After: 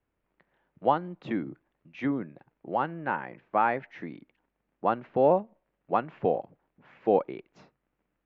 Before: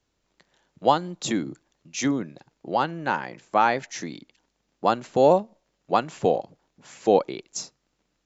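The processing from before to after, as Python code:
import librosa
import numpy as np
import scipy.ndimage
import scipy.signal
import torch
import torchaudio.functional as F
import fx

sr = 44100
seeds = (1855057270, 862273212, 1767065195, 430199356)

y = scipy.signal.sosfilt(scipy.signal.butter(4, 2400.0, 'lowpass', fs=sr, output='sos'), x)
y = y * librosa.db_to_amplitude(-4.5)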